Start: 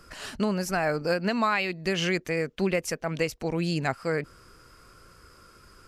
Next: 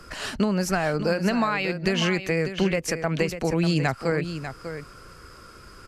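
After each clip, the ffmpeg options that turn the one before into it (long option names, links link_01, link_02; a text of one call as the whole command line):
ffmpeg -i in.wav -filter_complex "[0:a]highshelf=frequency=9600:gain=-6,acrossover=split=160[link_01][link_02];[link_02]acompressor=threshold=-28dB:ratio=6[link_03];[link_01][link_03]amix=inputs=2:normalize=0,aecho=1:1:595:0.316,volume=7dB" out.wav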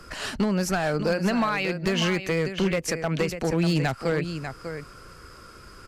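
ffmpeg -i in.wav -af "volume=17dB,asoftclip=hard,volume=-17dB" out.wav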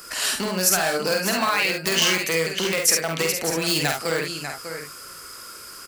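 ffmpeg -i in.wav -filter_complex "[0:a]aemphasis=mode=production:type=riaa,asplit=2[link_01][link_02];[link_02]aecho=0:1:49|69:0.631|0.422[link_03];[link_01][link_03]amix=inputs=2:normalize=0,volume=1.5dB" out.wav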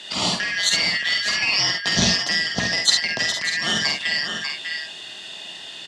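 ffmpeg -i in.wav -filter_complex "[0:a]afftfilt=real='real(if(lt(b,272),68*(eq(floor(b/68),0)*2+eq(floor(b/68),1)*0+eq(floor(b/68),2)*3+eq(floor(b/68),3)*1)+mod(b,68),b),0)':imag='imag(if(lt(b,272),68*(eq(floor(b/68),0)*2+eq(floor(b/68),1)*0+eq(floor(b/68),2)*3+eq(floor(b/68),3)*1)+mod(b,68),b),0)':win_size=2048:overlap=0.75,highpass=130,equalizer=frequency=190:width_type=q:width=4:gain=5,equalizer=frequency=660:width_type=q:width=4:gain=9,equalizer=frequency=1300:width_type=q:width=4:gain=-6,equalizer=frequency=2300:width_type=q:width=4:gain=-4,equalizer=frequency=5800:width_type=q:width=4:gain=-5,lowpass=frequency=5900:width=0.5412,lowpass=frequency=5900:width=1.3066,acrossover=split=270|3000[link_01][link_02][link_03];[link_02]acompressor=threshold=-31dB:ratio=6[link_04];[link_01][link_04][link_03]amix=inputs=3:normalize=0,volume=6.5dB" out.wav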